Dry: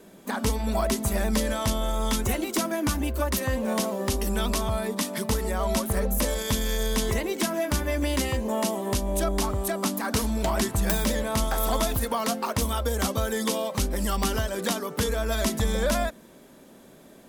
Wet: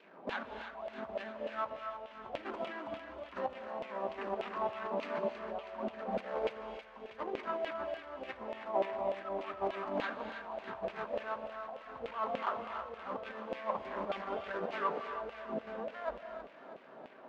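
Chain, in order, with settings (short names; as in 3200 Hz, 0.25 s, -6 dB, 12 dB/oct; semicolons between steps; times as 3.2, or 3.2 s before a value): median filter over 25 samples; LPF 4700 Hz 12 dB/oct; notches 50/100/150/200/250/300/350/400 Hz; negative-ratio compressor -33 dBFS, ratio -0.5; LFO band-pass saw down 3.4 Hz 580–2800 Hz; thinning echo 0.321 s, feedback 66%, high-pass 930 Hz, level -8.5 dB; on a send at -8 dB: reverb, pre-delay 3 ms; on the sum: gain +5.5 dB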